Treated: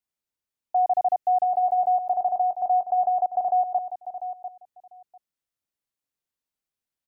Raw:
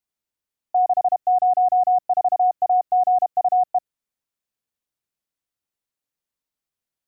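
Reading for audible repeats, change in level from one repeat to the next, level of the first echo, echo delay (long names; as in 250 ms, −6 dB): 2, −16.5 dB, −11.0 dB, 696 ms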